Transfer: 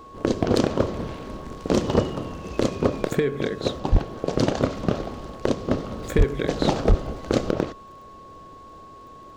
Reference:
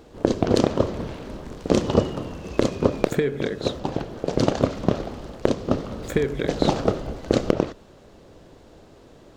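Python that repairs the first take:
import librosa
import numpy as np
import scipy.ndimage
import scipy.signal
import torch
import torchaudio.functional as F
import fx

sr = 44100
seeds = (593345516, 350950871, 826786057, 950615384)

y = fx.fix_declip(x, sr, threshold_db=-10.0)
y = fx.fix_declick_ar(y, sr, threshold=6.5)
y = fx.notch(y, sr, hz=1100.0, q=30.0)
y = fx.fix_deplosive(y, sr, at_s=(3.91, 6.17, 6.88))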